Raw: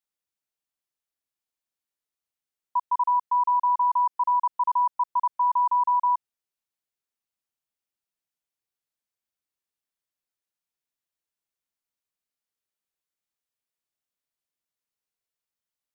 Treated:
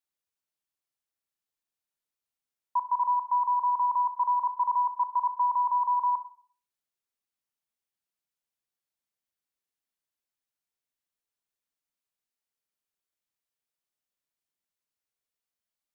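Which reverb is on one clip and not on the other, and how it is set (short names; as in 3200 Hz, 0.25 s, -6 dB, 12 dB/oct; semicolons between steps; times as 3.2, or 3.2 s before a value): Schroeder reverb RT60 0.47 s, combs from 28 ms, DRR 10 dB; gain -2 dB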